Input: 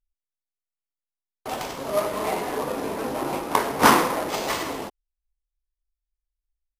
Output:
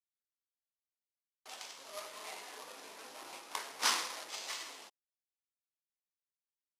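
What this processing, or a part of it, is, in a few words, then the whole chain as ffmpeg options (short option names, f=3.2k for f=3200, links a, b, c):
piezo pickup straight into a mixer: -filter_complex "[0:a]asettb=1/sr,asplit=3[a][b][c];[a]atrim=end=3.824[d];[b]atrim=start=3.82:end=4.25,asetpts=PTS-STARTPTS,afade=t=in:d=0.004:c=qsin,afade=t=out:st=0.426:d=0.004:c=qsin,equalizer=f=4.8k:w=0.76:g=4.5[e];[c]atrim=start=4.246[f];[d][e]acrossfade=d=0.004:c1=hsin:c2=qsin[g];[g][f]acrossfade=d=0.004:c1=qsin:c2=hsin,lowpass=5.9k,aderivative,volume=-3.5dB"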